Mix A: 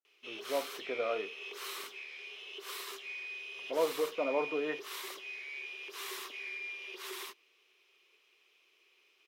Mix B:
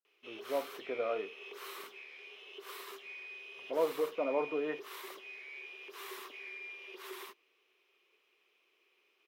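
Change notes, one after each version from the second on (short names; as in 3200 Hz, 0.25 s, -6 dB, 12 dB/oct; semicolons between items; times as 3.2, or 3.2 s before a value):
master: add bell 6200 Hz -9 dB 2.6 oct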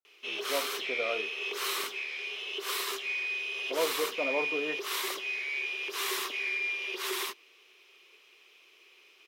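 background +9.5 dB; master: add bell 6200 Hz +9 dB 2.6 oct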